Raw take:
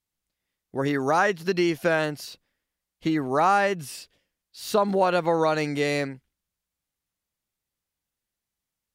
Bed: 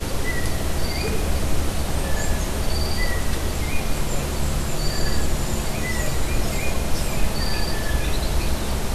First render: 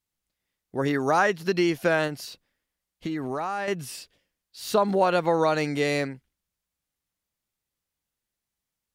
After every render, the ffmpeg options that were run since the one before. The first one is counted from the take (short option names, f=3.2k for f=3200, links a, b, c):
-filter_complex "[0:a]asettb=1/sr,asplit=3[a][b][c];[a]atrim=end=2.074[d];[b]atrim=start=2.07:end=3.68,asetpts=PTS-STARTPTS,afade=t=in:d=0.004:c=qsin,afade=t=out:st=1.606:d=0.004:c=qsin,acompressor=threshold=-26dB:ratio=6:attack=3.2:release=140:knee=1:detection=peak[e];[c]atrim=start=3.676[f];[d][e]acrossfade=d=0.004:c1=hsin:c2=qsin[g];[g][f]acrossfade=d=0.004:c1=qsin:c2=hsin"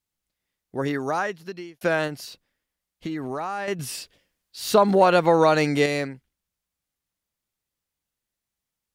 -filter_complex "[0:a]asettb=1/sr,asplit=3[a][b][c];[a]atrim=end=3.794[d];[b]atrim=start=3.79:end=5.86,asetpts=PTS-STARTPTS,afade=t=in:d=0.004:c=qsin,afade=t=out:st=2.066:d=0.004:c=qsin,acontrast=28[e];[c]atrim=start=5.856[f];[d][e]acrossfade=d=0.004:c1=hsin:c2=qsin[g];[g][f]acrossfade=d=0.004:c1=qsin:c2=hsin,asplit=2[h][i];[h]atrim=end=1.81,asetpts=PTS-STARTPTS,afade=t=out:st=0.78:d=1.03[j];[i]atrim=start=1.81,asetpts=PTS-STARTPTS,afade=t=in:d=0.004:c=hsin[k];[j][k]concat=n=2:v=0:a=1"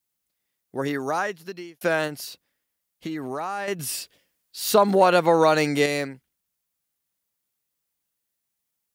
-af "highpass=f=140:p=1,highshelf=f=10k:g=11"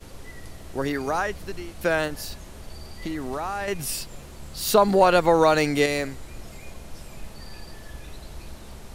-filter_complex "[1:a]volume=-17.5dB[a];[0:a][a]amix=inputs=2:normalize=0"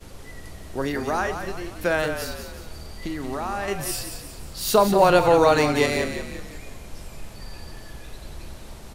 -filter_complex "[0:a]asplit=2[a][b];[b]adelay=40,volume=-13dB[c];[a][c]amix=inputs=2:normalize=0,asplit=6[d][e][f][g][h][i];[e]adelay=179,afreqshift=-37,volume=-8dB[j];[f]adelay=358,afreqshift=-74,volume=-14.6dB[k];[g]adelay=537,afreqshift=-111,volume=-21.1dB[l];[h]adelay=716,afreqshift=-148,volume=-27.7dB[m];[i]adelay=895,afreqshift=-185,volume=-34.2dB[n];[d][j][k][l][m][n]amix=inputs=6:normalize=0"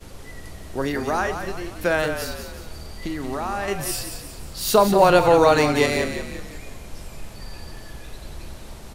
-af "volume=1.5dB"